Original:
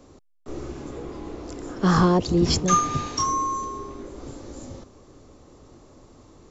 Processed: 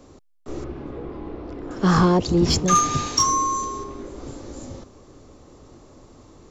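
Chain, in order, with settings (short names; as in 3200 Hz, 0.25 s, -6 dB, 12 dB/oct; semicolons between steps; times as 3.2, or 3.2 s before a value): 0.64–1.71 air absorption 320 m; in parallel at -10.5 dB: overloaded stage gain 19 dB; 2.75–3.84 on the sum: high shelf 4100 Hz +9.5 dB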